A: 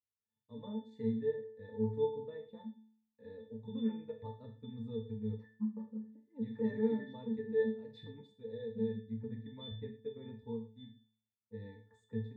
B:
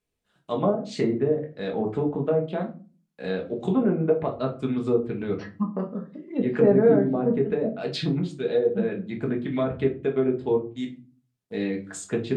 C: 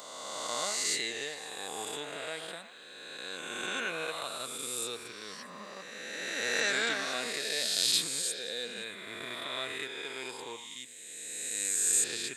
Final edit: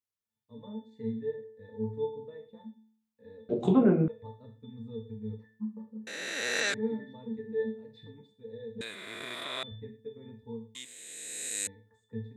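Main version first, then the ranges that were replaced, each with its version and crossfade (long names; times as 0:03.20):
A
0:03.49–0:04.08: punch in from B
0:06.07–0:06.74: punch in from C
0:08.81–0:09.63: punch in from C
0:10.75–0:11.67: punch in from C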